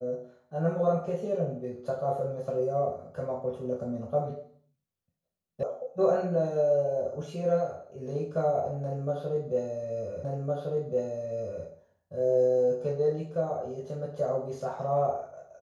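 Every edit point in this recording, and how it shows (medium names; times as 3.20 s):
5.63 s: sound stops dead
10.24 s: repeat of the last 1.41 s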